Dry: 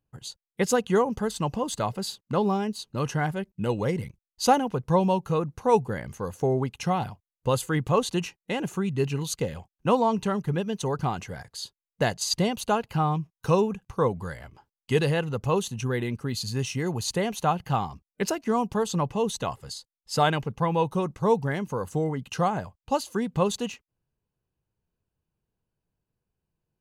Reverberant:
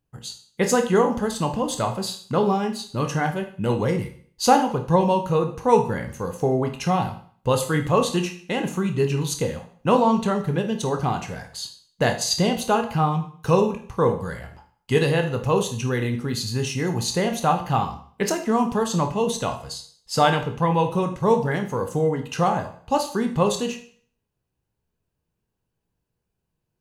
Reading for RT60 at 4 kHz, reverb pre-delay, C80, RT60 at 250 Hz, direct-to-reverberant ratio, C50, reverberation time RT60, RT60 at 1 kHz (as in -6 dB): 0.50 s, 17 ms, 14.5 dB, 0.50 s, 4.5 dB, 10.0 dB, 0.50 s, 0.50 s